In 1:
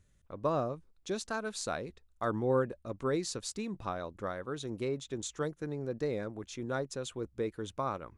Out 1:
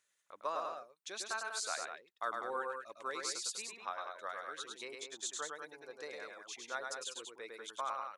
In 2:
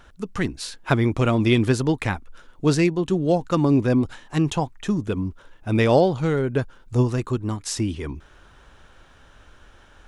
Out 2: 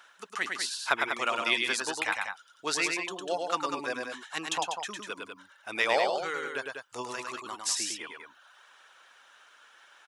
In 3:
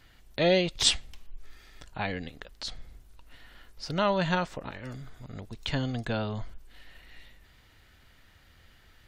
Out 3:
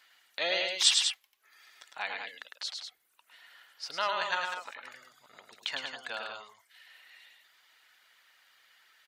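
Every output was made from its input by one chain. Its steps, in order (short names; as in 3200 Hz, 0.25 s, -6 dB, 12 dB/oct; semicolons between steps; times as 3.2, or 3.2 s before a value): HPF 1000 Hz 12 dB/oct; reverb removal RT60 0.87 s; loudspeakers at several distances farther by 36 m -4 dB, 67 m -7 dB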